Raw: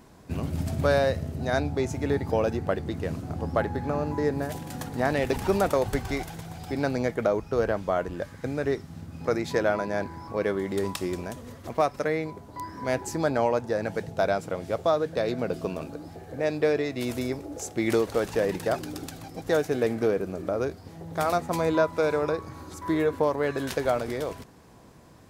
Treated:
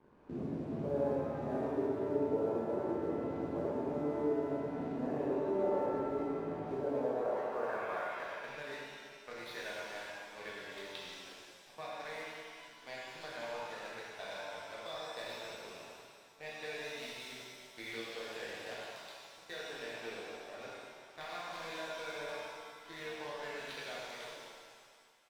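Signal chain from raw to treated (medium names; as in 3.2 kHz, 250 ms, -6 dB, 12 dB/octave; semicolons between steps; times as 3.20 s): distance through air 280 m; band-pass sweep 350 Hz -> 3.9 kHz, 6.55–8.77 s; peaking EQ 11 kHz -4.5 dB 2.7 oct; band-stop 1.3 kHz, Q 8.5; crossover distortion -57.5 dBFS; speakerphone echo 100 ms, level -9 dB; compression 2.5:1, threshold -50 dBFS, peak gain reduction 18.5 dB; pitch-shifted reverb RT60 2 s, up +7 st, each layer -8 dB, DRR -6.5 dB; trim +4 dB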